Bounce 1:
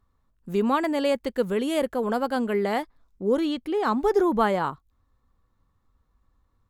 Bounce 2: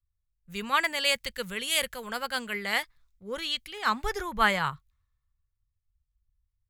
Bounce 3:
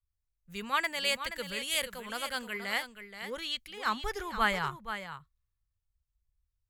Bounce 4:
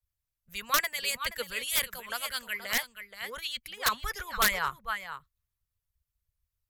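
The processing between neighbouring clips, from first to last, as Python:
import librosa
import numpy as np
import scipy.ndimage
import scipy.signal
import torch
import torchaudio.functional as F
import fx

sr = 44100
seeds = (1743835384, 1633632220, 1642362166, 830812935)

y1 = fx.curve_eq(x, sr, hz=(150.0, 290.0, 510.0, 750.0, 2100.0), db=(0, -20, -10, -10, 8))
y1 = fx.band_widen(y1, sr, depth_pct=70)
y2 = y1 + 10.0 ** (-10.0 / 20.0) * np.pad(y1, (int(476 * sr / 1000.0), 0))[:len(y1)]
y2 = y2 * 10.0 ** (-4.5 / 20.0)
y3 = fx.hpss(y2, sr, part='harmonic', gain_db=-15)
y3 = (np.mod(10.0 ** (21.0 / 20.0) * y3 + 1.0, 2.0) - 1.0) / 10.0 ** (21.0 / 20.0)
y3 = fx.graphic_eq_31(y3, sr, hz=(315, 800, 12500), db=(-11, -4, 9))
y3 = y3 * 10.0 ** (5.5 / 20.0)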